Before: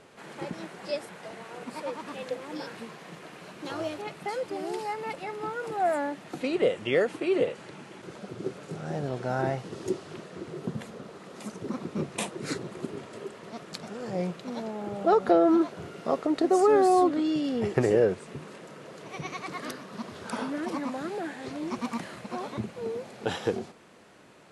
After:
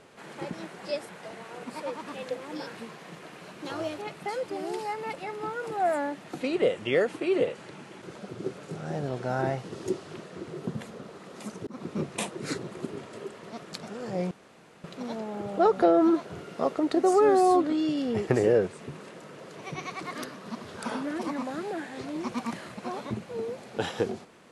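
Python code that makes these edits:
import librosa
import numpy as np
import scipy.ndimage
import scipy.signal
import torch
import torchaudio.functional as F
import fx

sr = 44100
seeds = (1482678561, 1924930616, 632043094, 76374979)

y = fx.edit(x, sr, fx.fade_in_span(start_s=11.67, length_s=0.25, curve='qsin'),
    fx.insert_room_tone(at_s=14.31, length_s=0.53), tone=tone)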